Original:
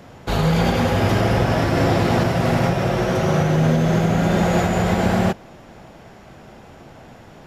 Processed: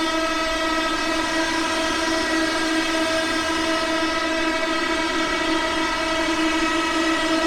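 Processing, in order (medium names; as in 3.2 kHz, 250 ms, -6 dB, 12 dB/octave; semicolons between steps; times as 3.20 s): treble shelf 2.2 kHz +8 dB; band-stop 4.5 kHz, Q 5.5; vocoder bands 8, saw 323 Hz; in parallel at -8 dB: sine folder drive 19 dB, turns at -7.5 dBFS; on the sum: Paulstretch 9.6×, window 0.25 s, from 2.31 s; on a send: band-passed feedback delay 76 ms, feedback 72%, band-pass 1.6 kHz, level -4 dB; on the sum: trim -6.5 dB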